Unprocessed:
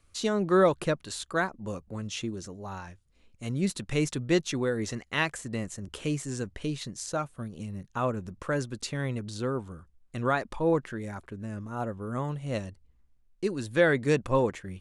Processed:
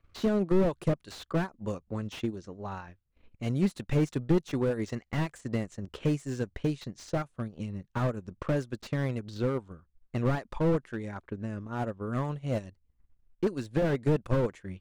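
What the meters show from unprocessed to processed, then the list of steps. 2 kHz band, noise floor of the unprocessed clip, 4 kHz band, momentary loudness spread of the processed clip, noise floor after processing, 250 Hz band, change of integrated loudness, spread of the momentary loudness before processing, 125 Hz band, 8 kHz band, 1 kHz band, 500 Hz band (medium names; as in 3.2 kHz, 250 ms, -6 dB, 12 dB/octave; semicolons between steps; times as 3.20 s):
-8.5 dB, -64 dBFS, -7.5 dB, 11 LU, -73 dBFS, +0.5 dB, -1.5 dB, 14 LU, +2.5 dB, -11.5 dB, -5.5 dB, -2.5 dB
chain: transient shaper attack +5 dB, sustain -10 dB; level-controlled noise filter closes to 2.4 kHz, open at -24 dBFS; slew-rate limiter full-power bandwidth 29 Hz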